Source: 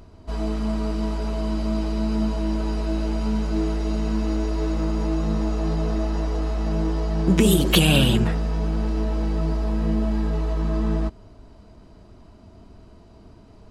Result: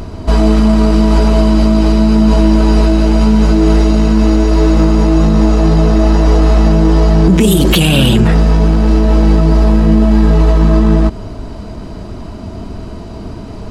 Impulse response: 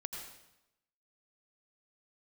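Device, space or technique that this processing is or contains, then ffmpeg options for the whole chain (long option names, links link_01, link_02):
mastering chain: -af "equalizer=frequency=190:width_type=o:width=1.4:gain=2,acompressor=threshold=-21dB:ratio=2,asoftclip=type=tanh:threshold=-10.5dB,alimiter=level_in=22dB:limit=-1dB:release=50:level=0:latency=1,volume=-1dB"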